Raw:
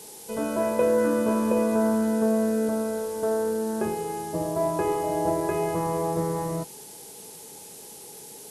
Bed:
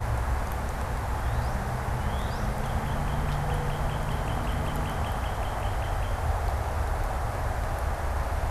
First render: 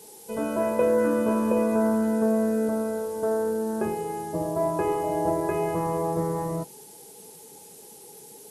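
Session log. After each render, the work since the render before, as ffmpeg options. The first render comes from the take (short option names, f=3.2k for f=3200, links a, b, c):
-af "afftdn=nr=6:nf=-44"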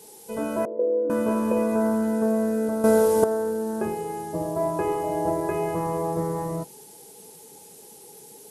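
-filter_complex "[0:a]asettb=1/sr,asplit=3[a][b][c];[a]atrim=end=0.654[d];[b]atrim=start=0.65:end=1.1,asetpts=PTS-STARTPTS,afade=t=in:d=0.004:c=qsin,afade=t=out:st=0.446:d=0.004:c=qsin,asuperpass=centerf=410:order=4:qfactor=1.8[e];[c]atrim=start=1.096[f];[d][e]acrossfade=d=0.004:c1=hsin:c2=qsin[g];[g][f]acrossfade=d=0.004:c1=qsin:c2=hsin,asplit=3[h][i][j];[h]atrim=end=2.842[k];[i]atrim=start=2.838:end=3.242,asetpts=PTS-STARTPTS,volume=11.5dB[l];[j]atrim=start=3.238[m];[k][l]acrossfade=d=0.004:c1=hsin:c2=hsin[n];[n][m]acrossfade=d=0.004:c1=hsin:c2=hsin"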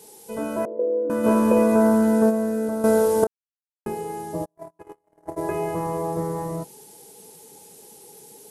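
-filter_complex "[0:a]asplit=3[a][b][c];[a]afade=t=out:st=1.23:d=0.02[d];[b]acontrast=43,afade=t=in:st=1.23:d=0.02,afade=t=out:st=2.29:d=0.02[e];[c]afade=t=in:st=2.29:d=0.02[f];[d][e][f]amix=inputs=3:normalize=0,asplit=3[g][h][i];[g]afade=t=out:st=4.44:d=0.02[j];[h]agate=range=-47dB:threshold=-22dB:ratio=16:release=100:detection=peak,afade=t=in:st=4.44:d=0.02,afade=t=out:st=5.36:d=0.02[k];[i]afade=t=in:st=5.36:d=0.02[l];[j][k][l]amix=inputs=3:normalize=0,asplit=3[m][n][o];[m]atrim=end=3.27,asetpts=PTS-STARTPTS,afade=t=out:st=3.266:d=0.004:c=hsin[p];[n]atrim=start=3.27:end=3.86,asetpts=PTS-STARTPTS,volume=0[q];[o]atrim=start=3.86,asetpts=PTS-STARTPTS,afade=t=in:d=0.004:c=hsin[r];[p][q][r]concat=n=3:v=0:a=1"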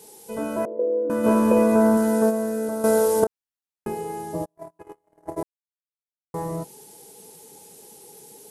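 -filter_complex "[0:a]asettb=1/sr,asplit=3[a][b][c];[a]atrim=end=1.974[d];[b]atrim=start=1.97:end=3.2,asetpts=PTS-STARTPTS,afade=t=in:d=0.004:c=qsin,afade=t=out:st=1.226:d=0.004:c=qsin,bass=f=250:g=-5,treble=f=4k:g=4[e];[c]atrim=start=3.196[f];[d][e]acrossfade=d=0.004:c1=hsin:c2=qsin[g];[g][f]acrossfade=d=0.004:c1=qsin:c2=hsin,asplit=3[h][i][j];[h]atrim=end=5.43,asetpts=PTS-STARTPTS,afade=t=out:st=5.426:d=0.004:c=hsin[k];[i]atrim=start=5.43:end=6.34,asetpts=PTS-STARTPTS,volume=0[l];[j]atrim=start=6.34,asetpts=PTS-STARTPTS,afade=t=in:d=0.004:c=hsin[m];[k][l][m]concat=n=3:v=0:a=1"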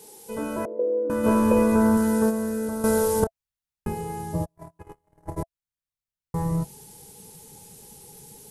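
-af "bandreject=f=670:w=14,asubboost=boost=8.5:cutoff=120"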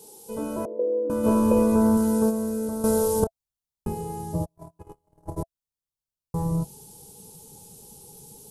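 -af "equalizer=f=1.9k:w=1.8:g=-15"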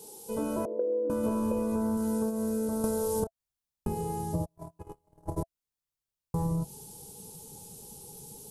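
-af "acompressor=threshold=-26dB:ratio=10"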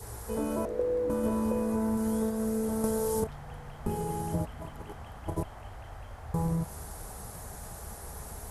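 -filter_complex "[1:a]volume=-15.5dB[a];[0:a][a]amix=inputs=2:normalize=0"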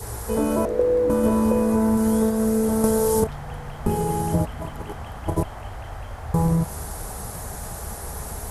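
-af "volume=9.5dB"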